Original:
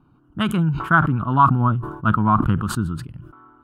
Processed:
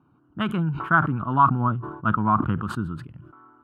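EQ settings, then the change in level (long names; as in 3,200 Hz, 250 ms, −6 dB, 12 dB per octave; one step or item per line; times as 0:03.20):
high-pass filter 75 Hz
bass and treble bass −3 dB, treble −14 dB
−2.5 dB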